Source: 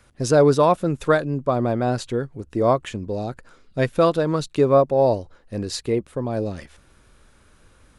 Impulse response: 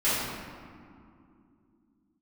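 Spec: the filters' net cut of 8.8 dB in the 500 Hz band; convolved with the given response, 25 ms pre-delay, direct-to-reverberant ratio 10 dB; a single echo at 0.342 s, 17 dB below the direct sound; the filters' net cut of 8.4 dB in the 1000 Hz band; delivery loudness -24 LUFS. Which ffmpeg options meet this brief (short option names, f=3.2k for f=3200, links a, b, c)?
-filter_complex "[0:a]equalizer=f=500:t=o:g=-8.5,equalizer=f=1k:t=o:g=-8,aecho=1:1:342:0.141,asplit=2[a][b];[1:a]atrim=start_sample=2205,adelay=25[c];[b][c]afir=irnorm=-1:irlink=0,volume=-24dB[d];[a][d]amix=inputs=2:normalize=0,volume=2.5dB"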